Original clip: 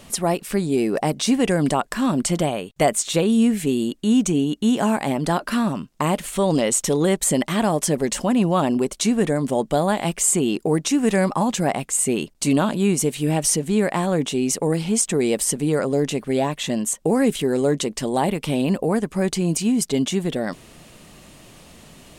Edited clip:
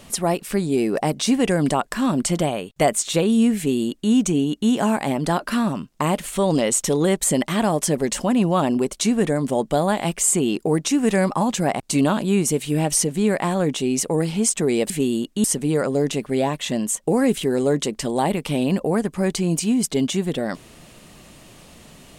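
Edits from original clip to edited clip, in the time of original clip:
3.57–4.11 copy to 15.42
11.8–12.32 cut

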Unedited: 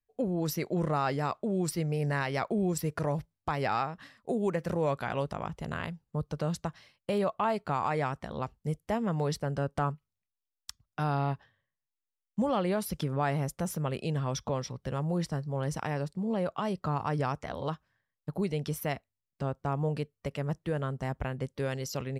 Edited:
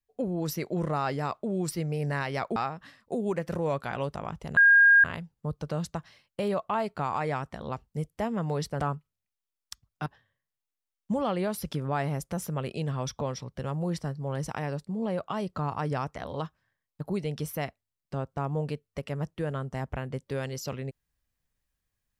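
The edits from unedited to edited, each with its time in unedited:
2.56–3.73 cut
5.74 add tone 1620 Hz -14 dBFS 0.47 s
9.5–9.77 cut
11.03–11.34 cut

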